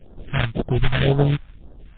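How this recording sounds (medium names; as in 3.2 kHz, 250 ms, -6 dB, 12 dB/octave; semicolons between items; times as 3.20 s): aliases and images of a low sample rate 1.1 kHz, jitter 20%; phasing stages 2, 1.9 Hz, lowest notch 380–2300 Hz; MP3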